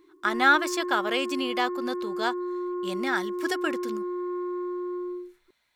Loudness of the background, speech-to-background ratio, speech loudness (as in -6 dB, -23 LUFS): -32.5 LUFS, 5.5 dB, -27.0 LUFS